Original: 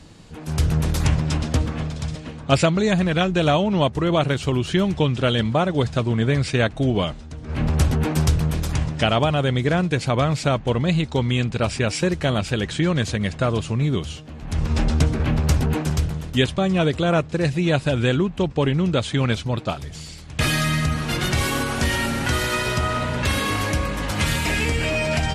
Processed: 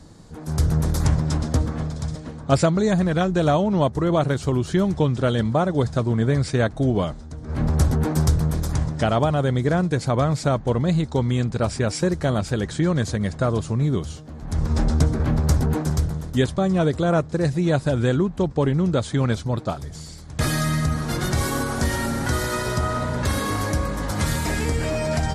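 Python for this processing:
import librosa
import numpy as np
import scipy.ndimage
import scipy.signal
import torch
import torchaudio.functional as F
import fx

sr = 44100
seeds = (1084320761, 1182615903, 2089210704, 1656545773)

y = fx.peak_eq(x, sr, hz=2700.0, db=-13.5, octaves=0.77)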